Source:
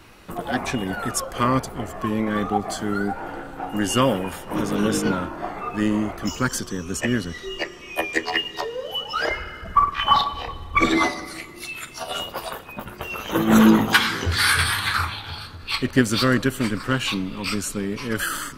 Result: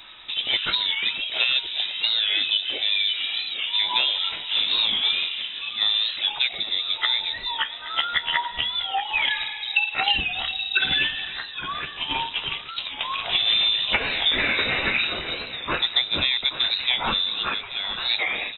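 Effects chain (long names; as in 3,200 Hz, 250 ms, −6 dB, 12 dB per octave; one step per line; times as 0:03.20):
0:03.20–0:03.67: comb filter 2 ms
0:05.42–0:05.86: noise gate −21 dBFS, range −7 dB
0:17.43–0:17.98: high-pass filter 400 Hz 12 dB per octave
downward compressor 12 to 1, threshold −21 dBFS, peak gain reduction 12.5 dB
on a send: single-tap delay 826 ms −13.5 dB
on the sum: voice inversion scrambler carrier 3,800 Hz
wow of a warped record 45 rpm, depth 100 cents
level +3 dB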